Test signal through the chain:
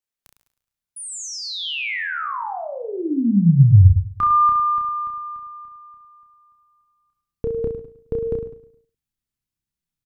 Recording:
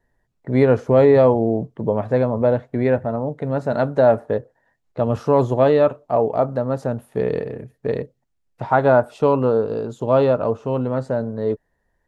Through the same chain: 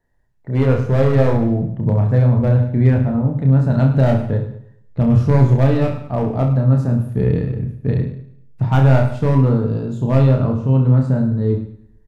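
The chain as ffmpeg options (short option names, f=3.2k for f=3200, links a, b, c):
-filter_complex "[0:a]acrossover=split=3000[a][b];[b]acompressor=threshold=-31dB:ratio=4:attack=1:release=60[c];[a][c]amix=inputs=2:normalize=0,volume=9dB,asoftclip=hard,volume=-9dB,asplit=2[d][e];[e]aecho=0:1:105|210|315|420:0.168|0.0688|0.0282|0.0116[f];[d][f]amix=inputs=2:normalize=0,asubboost=boost=11:cutoff=170,asplit=2[g][h];[h]aecho=0:1:30|64.5|104.2|149.8|202.3:0.631|0.398|0.251|0.158|0.1[i];[g][i]amix=inputs=2:normalize=0,volume=-3dB"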